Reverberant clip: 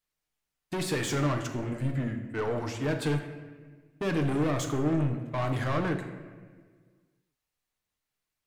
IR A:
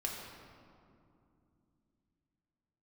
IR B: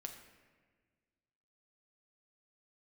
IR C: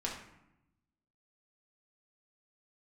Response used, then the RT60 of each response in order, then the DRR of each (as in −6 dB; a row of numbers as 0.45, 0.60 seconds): B; 2.5, 1.5, 0.85 seconds; −1.5, 3.5, −3.5 decibels